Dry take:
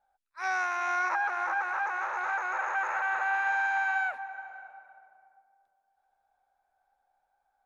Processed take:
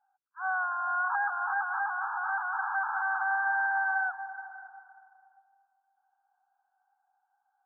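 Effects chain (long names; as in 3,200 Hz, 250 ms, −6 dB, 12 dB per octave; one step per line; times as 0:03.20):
linear-phase brick-wall band-pass 710–1,700 Hz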